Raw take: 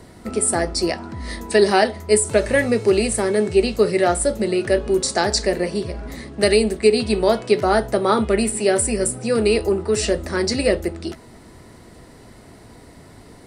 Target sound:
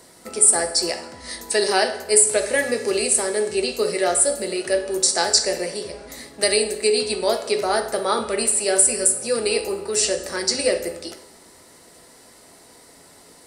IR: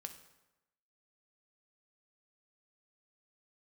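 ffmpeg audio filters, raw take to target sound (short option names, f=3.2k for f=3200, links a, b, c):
-filter_complex "[0:a]bass=f=250:g=-15,treble=f=4k:g=10[a];[1:a]atrim=start_sample=2205[b];[a][b]afir=irnorm=-1:irlink=0,volume=1.5dB"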